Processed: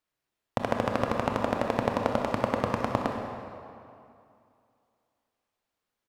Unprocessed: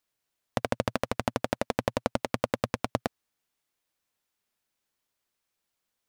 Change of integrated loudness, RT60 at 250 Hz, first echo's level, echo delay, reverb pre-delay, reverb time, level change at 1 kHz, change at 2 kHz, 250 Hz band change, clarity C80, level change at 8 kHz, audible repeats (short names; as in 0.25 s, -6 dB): +2.5 dB, 2.4 s, -13.0 dB, 64 ms, 24 ms, 2.5 s, +4.5 dB, +1.0 dB, +3.0 dB, 3.5 dB, -6.0 dB, 1